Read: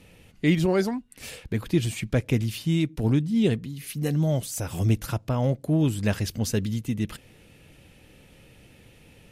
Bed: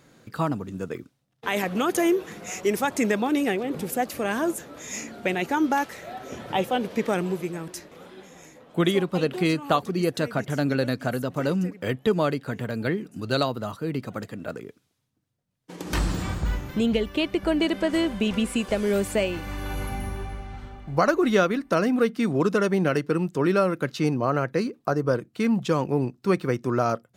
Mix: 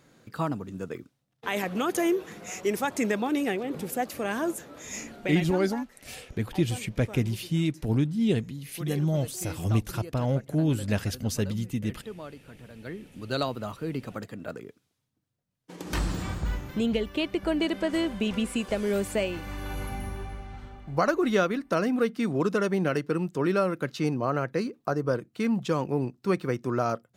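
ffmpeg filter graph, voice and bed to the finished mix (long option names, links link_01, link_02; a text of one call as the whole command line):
ffmpeg -i stem1.wav -i stem2.wav -filter_complex "[0:a]adelay=4850,volume=-2.5dB[link_01];[1:a]volume=11dB,afade=type=out:start_time=5.03:duration=0.67:silence=0.188365,afade=type=in:start_time=12.75:duration=0.77:silence=0.188365[link_02];[link_01][link_02]amix=inputs=2:normalize=0" out.wav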